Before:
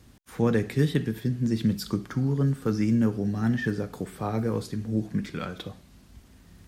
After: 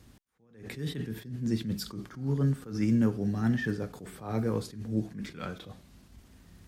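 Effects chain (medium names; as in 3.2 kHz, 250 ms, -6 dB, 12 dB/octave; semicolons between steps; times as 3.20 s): attacks held to a fixed rise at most 120 dB/s; trim -2 dB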